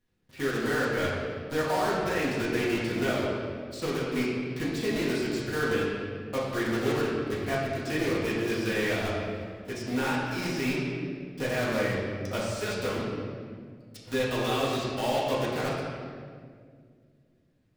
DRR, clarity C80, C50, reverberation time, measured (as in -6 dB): -8.0 dB, 1.5 dB, -0.5 dB, 2.0 s